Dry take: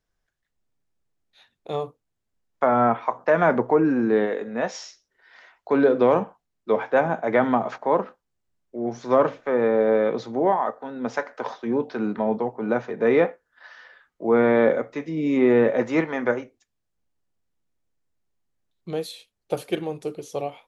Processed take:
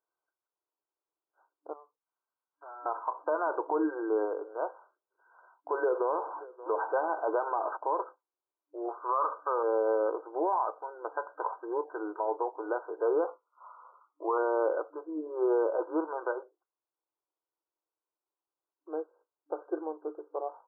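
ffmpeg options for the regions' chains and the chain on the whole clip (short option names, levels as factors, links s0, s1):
-filter_complex "[0:a]asettb=1/sr,asplit=3[s0][s1][s2];[s0]atrim=end=1.734[s3];[s1]atrim=start=1.73:end=2.86,asetpts=PTS-STARTPTS,afade=t=in:d=0.004:c=qsin,afade=t=out:st=1.126:d=0.004:c=qsin,acompressor=mode=upward:threshold=0.0112:ratio=2.5:attack=3.2:release=140:knee=2.83:detection=peak,aderivative,aeval=exprs='0.0188*(abs(mod(val(0)/0.0188+3,4)-2)-1)':c=same[s4];[s2]atrim=start=2.856[s5];[s3][s4]acrossfade=d=0.004:c1=hsin:c2=qsin[s6];[s6][s5]acrossfade=d=0.004:c1=qsin:c2=hsin,asettb=1/sr,asplit=3[s7][s8][s9];[s7]atrim=end=5.794[s10];[s8]atrim=start=5.79:end=7.77,asetpts=PTS-STARTPTS,afade=t=in:d=0.004:c=qsin,afade=t=out:st=1.976:d=0.004:c=qsin,aeval=exprs='val(0)+0.5*0.0266*sgn(val(0))':c=same,aecho=1:1:578:0.075,atrim=end_sample=87318[s11];[s9]atrim=start=7.766[s12];[s10][s11]acrossfade=d=0.004:c1=hsin:c2=qsin[s13];[s13][s12]acrossfade=d=0.004:c1=qsin:c2=hsin,asettb=1/sr,asplit=3[s14][s15][s16];[s14]atrim=end=8.884[s17];[s15]atrim=start=8.88:end=9.63,asetpts=PTS-STARTPTS,afade=t=in:d=0.004:c=qsin,afade=t=out:st=0.746:d=0.004:c=qsin,lowpass=f=1200:t=q:w=6.6,equalizer=f=330:w=6.8:g=-7[s18];[s16]atrim=start=9.626[s19];[s17][s18]acrossfade=d=0.004:c1=hsin:c2=qsin[s20];[s20][s19]acrossfade=d=0.004:c1=qsin:c2=hsin,asettb=1/sr,asplit=3[s21][s22][s23];[s21]atrim=end=13.274[s24];[s22]atrim=start=13.27:end=14.38,asetpts=PTS-STARTPTS,afade=t=in:d=0.004:c=qsin,afade=t=out:st=1.106:d=0.004:c=qsin,asuperstop=centerf=1700:order=20:qfactor=3,equalizer=f=1100:t=o:w=0.46:g=10.5[s25];[s23]atrim=start=14.376[s26];[s24][s25]acrossfade=d=0.004:c1=hsin:c2=qsin[s27];[s27][s26]acrossfade=d=0.004:c1=qsin:c2=hsin,afftfilt=real='re*between(b*sr/4096,300,1600)':imag='im*between(b*sr/4096,300,1600)':win_size=4096:overlap=0.75,equalizer=f=980:t=o:w=0.44:g=9,alimiter=limit=0.237:level=0:latency=1:release=64,volume=0.422"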